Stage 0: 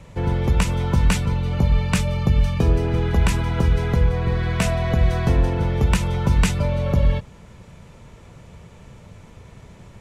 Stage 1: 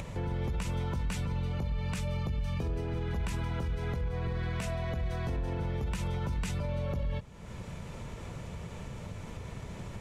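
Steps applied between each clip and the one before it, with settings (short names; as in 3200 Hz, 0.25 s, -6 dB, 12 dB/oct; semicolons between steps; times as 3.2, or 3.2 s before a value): upward compressor, threshold -21 dBFS; limiter -17.5 dBFS, peak gain reduction 9.5 dB; gain -8.5 dB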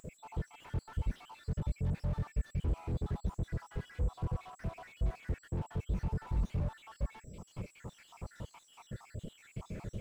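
random spectral dropouts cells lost 72%; whine 7700 Hz -65 dBFS; slew limiter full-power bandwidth 3.5 Hz; gain +2 dB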